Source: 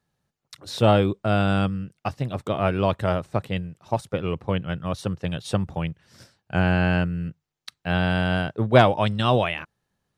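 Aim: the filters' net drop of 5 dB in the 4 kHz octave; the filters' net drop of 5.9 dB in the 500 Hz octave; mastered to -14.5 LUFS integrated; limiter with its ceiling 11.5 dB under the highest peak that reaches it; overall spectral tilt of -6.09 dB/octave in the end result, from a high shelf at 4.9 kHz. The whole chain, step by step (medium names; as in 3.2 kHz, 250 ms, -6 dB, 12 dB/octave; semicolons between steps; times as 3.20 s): peaking EQ 500 Hz -7.5 dB; peaking EQ 4 kHz -3.5 dB; treble shelf 4.9 kHz -8 dB; trim +15 dB; peak limiter -2.5 dBFS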